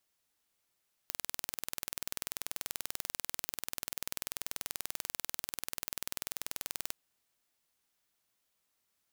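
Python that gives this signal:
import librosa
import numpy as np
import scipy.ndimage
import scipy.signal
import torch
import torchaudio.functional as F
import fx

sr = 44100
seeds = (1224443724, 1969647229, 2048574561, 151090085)

y = 10.0 ** (-8.5 / 20.0) * (np.mod(np.arange(round(5.85 * sr)), round(sr / 20.5)) == 0)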